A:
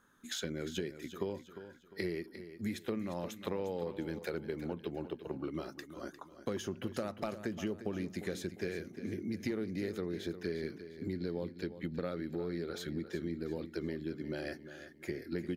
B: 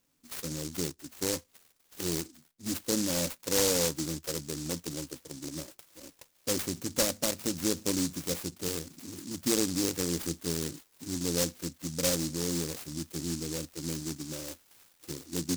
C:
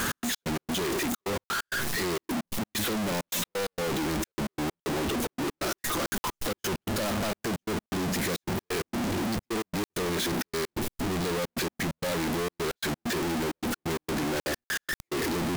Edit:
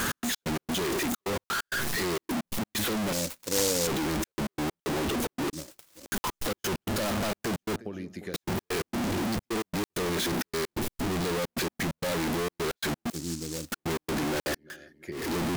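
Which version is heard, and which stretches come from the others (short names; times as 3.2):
C
3.13–3.87 from B
5.53–6.06 from B
7.76–8.34 from A
13.1–13.72 from B
14.65–15.22 from A, crossfade 0.24 s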